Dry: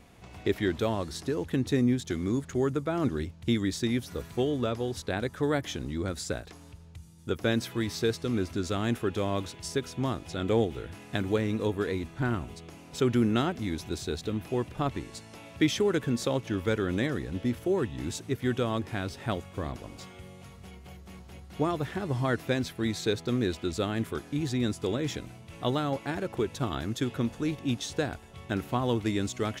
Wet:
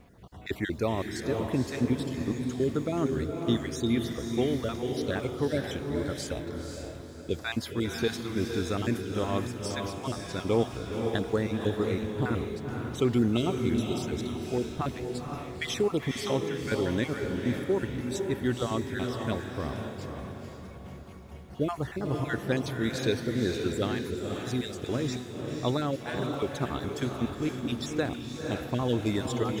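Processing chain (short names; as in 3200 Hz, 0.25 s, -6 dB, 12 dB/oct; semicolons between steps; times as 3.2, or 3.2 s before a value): random spectral dropouts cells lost 32%; added noise white -70 dBFS; on a send: diffused feedback echo 0.513 s, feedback 46%, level -4 dB; on the sum: mismatched tape noise reduction decoder only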